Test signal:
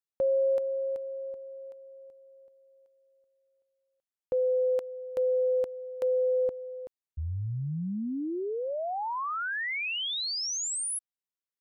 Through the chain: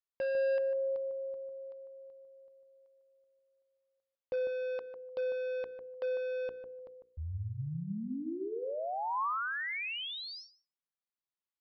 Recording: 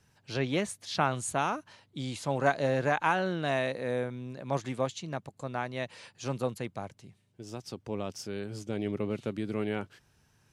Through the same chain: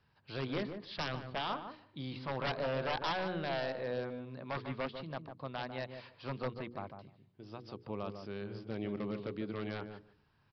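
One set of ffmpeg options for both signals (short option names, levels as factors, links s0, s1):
-filter_complex "[0:a]equalizer=f=1100:t=o:w=0.58:g=5.5,acrossover=split=3400[s0][s1];[s1]acompressor=threshold=0.00631:ratio=4:attack=1:release=60[s2];[s0][s2]amix=inputs=2:normalize=0,bandreject=f=60:t=h:w=6,bandreject=f=120:t=h:w=6,bandreject=f=180:t=h:w=6,bandreject=f=240:t=h:w=6,bandreject=f=300:t=h:w=6,bandreject=f=360:t=h:w=6,bandreject=f=420:t=h:w=6,bandreject=f=480:t=h:w=6,aresample=11025,aeval=exprs='0.0668*(abs(mod(val(0)/0.0668+3,4)-2)-1)':c=same,aresample=44100,asplit=2[s3][s4];[s4]adelay=150,lowpass=f=950:p=1,volume=0.501,asplit=2[s5][s6];[s6]adelay=150,lowpass=f=950:p=1,volume=0.15,asplit=2[s7][s8];[s8]adelay=150,lowpass=f=950:p=1,volume=0.15[s9];[s3][s5][s7][s9]amix=inputs=4:normalize=0,volume=0.531"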